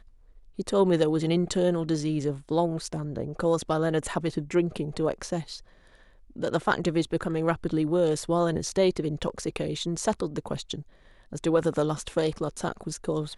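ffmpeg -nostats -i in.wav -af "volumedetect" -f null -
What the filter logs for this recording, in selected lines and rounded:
mean_volume: -27.6 dB
max_volume: -8.1 dB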